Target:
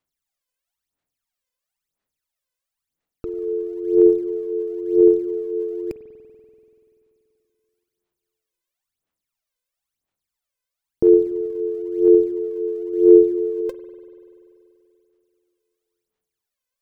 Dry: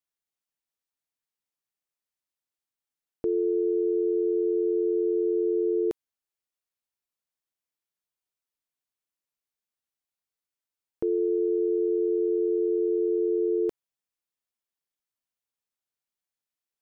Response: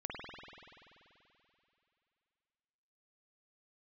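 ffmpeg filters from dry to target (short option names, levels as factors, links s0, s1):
-filter_complex "[0:a]aphaser=in_gain=1:out_gain=1:delay=2:decay=0.79:speed=0.99:type=sinusoidal,asettb=1/sr,asplit=3[s0][s1][s2];[s0]atrim=end=12.924[s3];[s1]atrim=start=12.92:end=13.61,asetpts=PTS-STARTPTS,afade=t=in:d=0.004:c=qsin,afade=t=out:st=0.686:d=0.004:c=qsin,asplit=2[s4][s5];[s5]adelay=14,volume=0.501[s6];[s4][s6]amix=inputs=2:normalize=0,atrim=end_sample=30429[s7];[s2]atrim=start=13.606[s8];[s3][s7]acrossfade=d=0.004:c1=hsin:c2=qsin[s9];[s9][s8]acrossfade=d=0.004:c1=qsin:c2=hsin,asplit=2[s10][s11];[1:a]atrim=start_sample=2205[s12];[s11][s12]afir=irnorm=-1:irlink=0,volume=0.299[s13];[s10][s13]amix=inputs=2:normalize=0"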